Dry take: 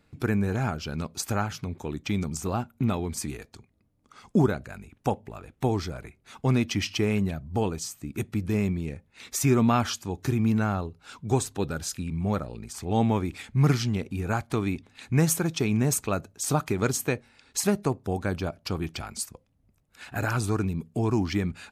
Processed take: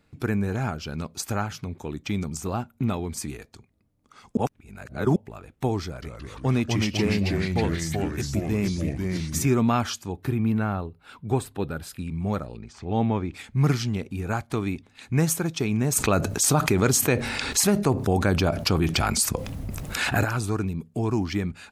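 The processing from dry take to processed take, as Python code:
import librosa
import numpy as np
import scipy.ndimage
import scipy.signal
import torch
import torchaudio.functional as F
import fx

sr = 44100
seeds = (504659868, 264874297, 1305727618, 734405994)

y = fx.echo_pitch(x, sr, ms=172, semitones=-2, count=3, db_per_echo=-3.0, at=(5.85, 9.47))
y = fx.peak_eq(y, sr, hz=6300.0, db=-14.5, octaves=0.76, at=(10.12, 11.99))
y = fx.air_absorb(y, sr, metres=150.0, at=(12.57, 13.34))
y = fx.env_flatten(y, sr, amount_pct=70, at=(15.95, 20.23), fade=0.02)
y = fx.edit(y, sr, fx.reverse_span(start_s=4.37, length_s=0.79), tone=tone)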